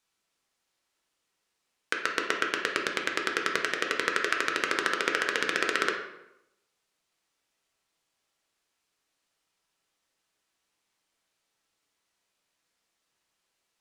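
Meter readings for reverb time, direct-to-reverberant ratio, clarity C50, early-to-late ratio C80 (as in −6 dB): 0.85 s, 0.5 dB, 5.5 dB, 8.5 dB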